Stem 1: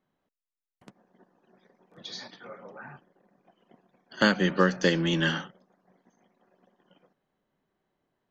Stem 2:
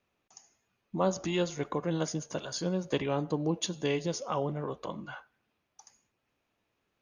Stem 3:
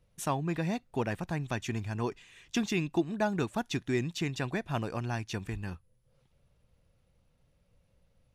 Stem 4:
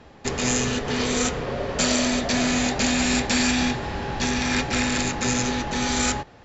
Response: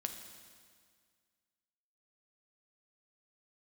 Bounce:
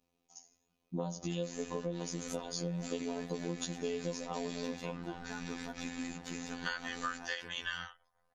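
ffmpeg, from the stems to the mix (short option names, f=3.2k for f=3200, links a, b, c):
-filter_complex "[0:a]highpass=f=750:w=0.5412,highpass=f=750:w=1.3066,adelay=2450,volume=-6dB[a];[1:a]equalizer=f=1.6k:w=1.1:g=-13.5,volume=1dB[b];[2:a]adelay=2100,volume=-12dB[c];[3:a]tremolo=f=57:d=0.974,adelay=1050,volume=-17dB[d];[a][b][c][d]amix=inputs=4:normalize=0,aecho=1:1:4:0.93,afftfilt=real='hypot(re,im)*cos(PI*b)':imag='0':win_size=2048:overlap=0.75,acompressor=threshold=-33dB:ratio=6"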